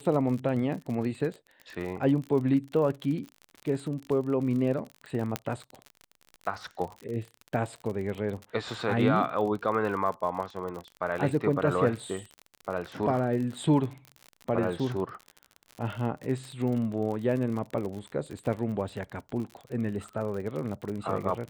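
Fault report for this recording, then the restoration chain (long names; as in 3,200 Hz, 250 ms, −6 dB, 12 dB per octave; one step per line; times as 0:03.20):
surface crackle 46 per second −34 dBFS
0:05.36: click −12 dBFS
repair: click removal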